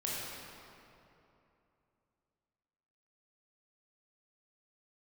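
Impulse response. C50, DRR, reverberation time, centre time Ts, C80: -3.5 dB, -6.5 dB, 2.9 s, 167 ms, -1.5 dB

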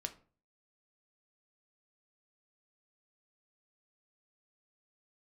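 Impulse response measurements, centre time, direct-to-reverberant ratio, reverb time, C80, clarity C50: 7 ms, 6.0 dB, 0.40 s, 20.5 dB, 15.0 dB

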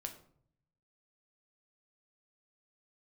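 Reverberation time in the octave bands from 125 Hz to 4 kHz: 1.2 s, 0.85 s, 0.65 s, 0.55 s, 0.40 s, 0.35 s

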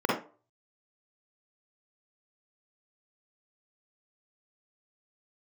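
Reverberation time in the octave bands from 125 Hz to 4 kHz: 0.35 s, 0.35 s, 0.40 s, 0.35 s, 0.30 s, 0.20 s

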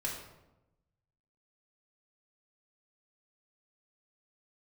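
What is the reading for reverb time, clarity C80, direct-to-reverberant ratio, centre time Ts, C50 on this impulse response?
0.95 s, 6.5 dB, -4.0 dB, 42 ms, 4.0 dB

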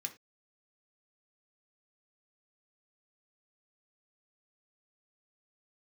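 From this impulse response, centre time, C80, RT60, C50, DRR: 7 ms, 21.0 dB, no single decay rate, 14.5 dB, 3.5 dB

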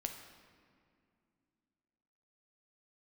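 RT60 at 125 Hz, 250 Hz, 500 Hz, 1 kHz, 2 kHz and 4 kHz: 3.0 s, 3.3 s, 2.5 s, 2.2 s, 1.9 s, 1.4 s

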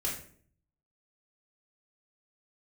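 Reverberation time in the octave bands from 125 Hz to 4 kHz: 0.90 s, 0.75 s, 0.60 s, 0.45 s, 0.45 s, 0.35 s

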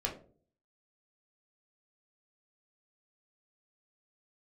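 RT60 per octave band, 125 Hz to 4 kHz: 0.65 s, 0.60 s, 0.55 s, 0.40 s, 0.25 s, 0.25 s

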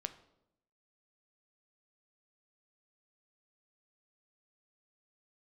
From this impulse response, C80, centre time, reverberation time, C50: 17.0 dB, 6 ms, 0.80 s, 14.0 dB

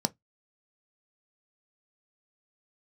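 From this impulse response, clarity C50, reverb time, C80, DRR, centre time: 29.5 dB, no single decay rate, 43.0 dB, 9.0 dB, 3 ms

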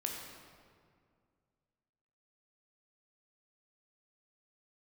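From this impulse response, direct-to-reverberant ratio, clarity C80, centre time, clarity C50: 0.0 dB, 3.5 dB, 73 ms, 2.0 dB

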